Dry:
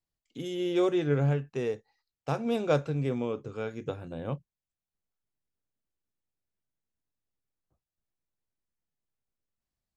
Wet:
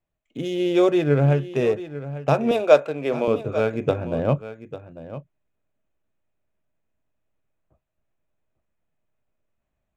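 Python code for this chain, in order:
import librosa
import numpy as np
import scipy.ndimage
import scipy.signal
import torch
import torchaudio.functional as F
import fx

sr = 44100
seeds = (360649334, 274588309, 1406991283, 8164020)

p1 = fx.wiener(x, sr, points=9)
p2 = fx.highpass(p1, sr, hz=410.0, slope=12, at=(2.51, 3.28))
p3 = fx.rider(p2, sr, range_db=10, speed_s=0.5)
p4 = p2 + (p3 * 10.0 ** (-2.5 / 20.0))
p5 = fx.small_body(p4, sr, hz=(620.0, 2500.0), ring_ms=45, db=10)
p6 = p5 + fx.echo_single(p5, sr, ms=847, db=-14.0, dry=0)
y = p6 * 10.0 ** (4.0 / 20.0)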